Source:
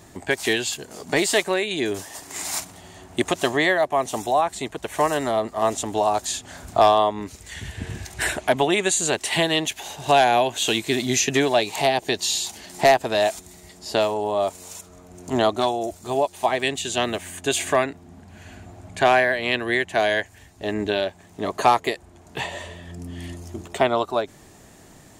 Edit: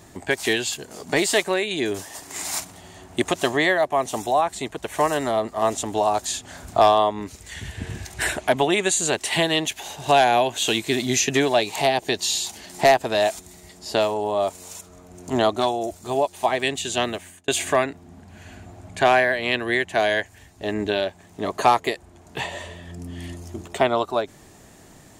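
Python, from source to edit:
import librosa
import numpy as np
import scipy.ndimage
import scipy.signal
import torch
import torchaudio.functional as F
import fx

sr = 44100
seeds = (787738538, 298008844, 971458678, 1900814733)

y = fx.edit(x, sr, fx.fade_out_span(start_s=17.02, length_s=0.46), tone=tone)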